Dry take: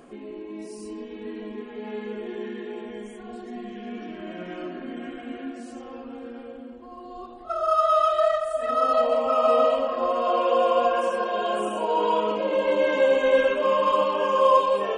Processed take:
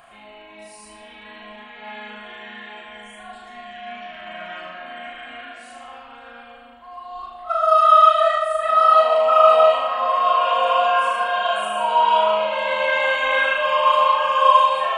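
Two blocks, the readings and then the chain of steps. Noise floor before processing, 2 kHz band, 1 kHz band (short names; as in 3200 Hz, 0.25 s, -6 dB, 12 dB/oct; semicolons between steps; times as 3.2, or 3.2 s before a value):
-41 dBFS, +10.0 dB, +8.0 dB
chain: EQ curve 140 Hz 0 dB, 260 Hz -16 dB, 430 Hz -17 dB, 640 Hz +7 dB, 1300 Hz +11 dB, 3800 Hz +11 dB, 5600 Hz 0 dB, 11000 Hz +10 dB; on a send: flutter echo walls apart 6.5 m, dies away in 0.61 s; on the sum: gain -4 dB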